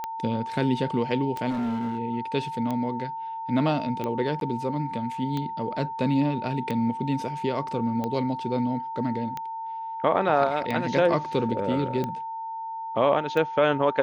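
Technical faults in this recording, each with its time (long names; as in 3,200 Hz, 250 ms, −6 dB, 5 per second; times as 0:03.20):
scratch tick 45 rpm −17 dBFS
whistle 900 Hz −31 dBFS
0:01.49–0:01.99: clipping −24.5 dBFS
0:04.40–0:04.41: drop-out 12 ms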